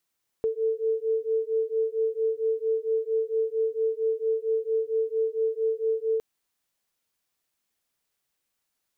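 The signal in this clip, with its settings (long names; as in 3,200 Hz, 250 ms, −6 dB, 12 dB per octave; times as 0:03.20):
two tones that beat 443 Hz, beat 4.4 Hz, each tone −26.5 dBFS 5.76 s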